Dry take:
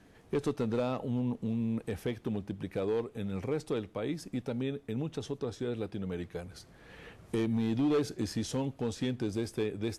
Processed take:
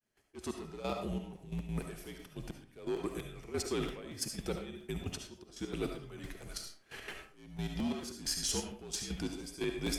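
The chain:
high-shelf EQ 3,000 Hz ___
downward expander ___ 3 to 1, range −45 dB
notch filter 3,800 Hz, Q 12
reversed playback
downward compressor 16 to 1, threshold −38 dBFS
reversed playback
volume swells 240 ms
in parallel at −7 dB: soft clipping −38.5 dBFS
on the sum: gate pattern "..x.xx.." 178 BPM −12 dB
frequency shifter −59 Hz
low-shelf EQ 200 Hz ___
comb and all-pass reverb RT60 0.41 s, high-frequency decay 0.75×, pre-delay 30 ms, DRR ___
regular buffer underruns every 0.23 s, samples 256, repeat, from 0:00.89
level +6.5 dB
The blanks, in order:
+11 dB, −43 dBFS, −6 dB, 3.5 dB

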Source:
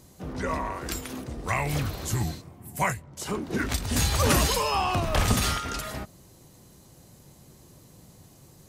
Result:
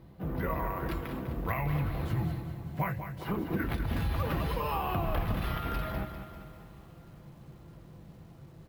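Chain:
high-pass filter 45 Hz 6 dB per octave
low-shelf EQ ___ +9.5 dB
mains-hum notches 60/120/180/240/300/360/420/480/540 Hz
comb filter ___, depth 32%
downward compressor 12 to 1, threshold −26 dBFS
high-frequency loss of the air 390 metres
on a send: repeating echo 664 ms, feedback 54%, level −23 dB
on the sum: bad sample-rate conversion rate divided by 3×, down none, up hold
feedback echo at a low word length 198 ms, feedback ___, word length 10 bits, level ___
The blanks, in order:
95 Hz, 6 ms, 55%, −9 dB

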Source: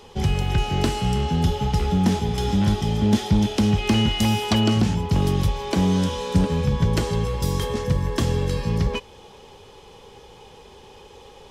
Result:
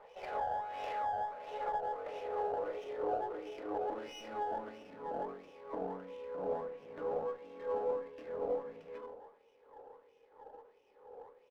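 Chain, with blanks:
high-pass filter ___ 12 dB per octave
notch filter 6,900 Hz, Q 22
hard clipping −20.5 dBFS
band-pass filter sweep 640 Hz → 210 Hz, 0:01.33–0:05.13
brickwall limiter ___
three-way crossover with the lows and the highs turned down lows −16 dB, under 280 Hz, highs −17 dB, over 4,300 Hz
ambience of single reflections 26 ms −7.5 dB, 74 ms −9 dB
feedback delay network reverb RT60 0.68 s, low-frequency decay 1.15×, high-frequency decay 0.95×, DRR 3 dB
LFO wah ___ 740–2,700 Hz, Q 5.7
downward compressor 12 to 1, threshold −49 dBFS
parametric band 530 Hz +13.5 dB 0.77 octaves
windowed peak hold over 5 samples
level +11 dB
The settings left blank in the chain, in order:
56 Hz, −23.5 dBFS, 1.5 Hz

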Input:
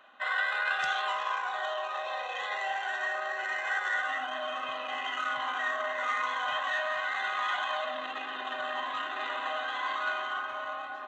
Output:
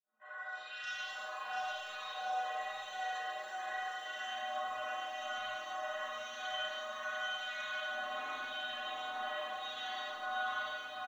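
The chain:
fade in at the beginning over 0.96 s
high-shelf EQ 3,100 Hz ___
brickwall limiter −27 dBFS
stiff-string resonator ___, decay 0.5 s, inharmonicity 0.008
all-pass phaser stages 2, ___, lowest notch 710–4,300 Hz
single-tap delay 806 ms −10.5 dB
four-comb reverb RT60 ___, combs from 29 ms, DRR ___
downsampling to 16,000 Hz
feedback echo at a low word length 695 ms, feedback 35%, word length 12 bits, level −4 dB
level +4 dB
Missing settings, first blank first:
+3 dB, 110 Hz, 0.89 Hz, 1.1 s, −6 dB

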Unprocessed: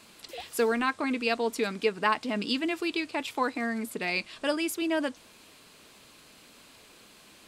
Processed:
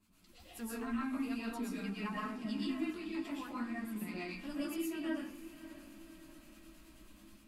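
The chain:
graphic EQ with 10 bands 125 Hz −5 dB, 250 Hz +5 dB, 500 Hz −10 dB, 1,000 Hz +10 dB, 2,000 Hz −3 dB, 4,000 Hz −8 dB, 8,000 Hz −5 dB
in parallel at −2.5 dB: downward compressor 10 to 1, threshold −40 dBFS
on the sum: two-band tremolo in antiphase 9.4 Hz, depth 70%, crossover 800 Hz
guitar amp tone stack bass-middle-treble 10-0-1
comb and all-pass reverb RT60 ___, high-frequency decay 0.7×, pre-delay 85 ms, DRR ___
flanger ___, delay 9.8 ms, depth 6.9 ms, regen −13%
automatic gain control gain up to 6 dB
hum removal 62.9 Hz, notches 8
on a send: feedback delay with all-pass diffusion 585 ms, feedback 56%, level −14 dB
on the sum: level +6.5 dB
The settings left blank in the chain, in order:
0.46 s, −6 dB, 0.5 Hz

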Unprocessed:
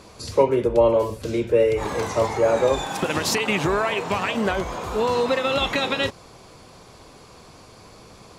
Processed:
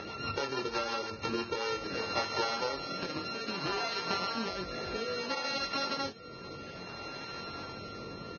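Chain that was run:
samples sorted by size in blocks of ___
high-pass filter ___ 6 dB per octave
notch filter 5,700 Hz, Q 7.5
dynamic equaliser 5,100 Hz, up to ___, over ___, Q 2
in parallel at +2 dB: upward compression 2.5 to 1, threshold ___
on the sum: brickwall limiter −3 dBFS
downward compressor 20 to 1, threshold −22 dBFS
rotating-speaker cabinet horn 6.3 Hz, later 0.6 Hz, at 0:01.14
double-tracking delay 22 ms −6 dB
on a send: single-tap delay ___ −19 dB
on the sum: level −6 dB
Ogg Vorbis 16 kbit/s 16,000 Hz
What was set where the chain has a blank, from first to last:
32 samples, 210 Hz, +5 dB, −40 dBFS, −27 dBFS, 1,140 ms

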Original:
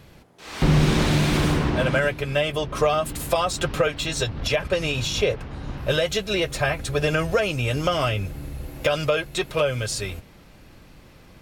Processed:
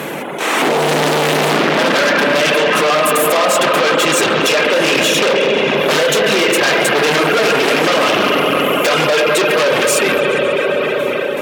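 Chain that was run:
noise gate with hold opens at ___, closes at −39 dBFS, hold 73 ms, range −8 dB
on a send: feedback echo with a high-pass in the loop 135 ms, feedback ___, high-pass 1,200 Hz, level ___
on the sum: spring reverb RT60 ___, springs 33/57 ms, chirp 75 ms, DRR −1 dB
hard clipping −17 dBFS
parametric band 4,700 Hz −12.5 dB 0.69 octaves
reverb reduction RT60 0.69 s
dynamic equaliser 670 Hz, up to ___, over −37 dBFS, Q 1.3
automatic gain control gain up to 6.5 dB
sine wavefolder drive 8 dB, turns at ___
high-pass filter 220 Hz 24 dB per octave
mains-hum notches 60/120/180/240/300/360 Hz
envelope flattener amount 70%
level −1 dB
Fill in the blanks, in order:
−37 dBFS, 59%, −15.5 dB, 4 s, −5 dB, −9.5 dBFS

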